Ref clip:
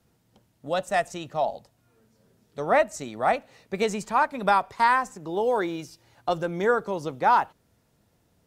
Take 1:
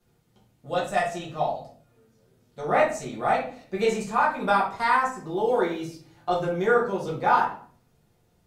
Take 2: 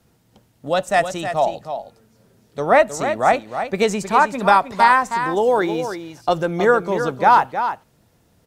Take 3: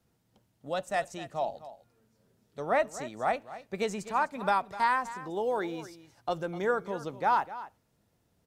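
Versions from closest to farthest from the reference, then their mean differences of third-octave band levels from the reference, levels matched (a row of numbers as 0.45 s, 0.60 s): 3, 2, 1; 2.0 dB, 3.5 dB, 5.5 dB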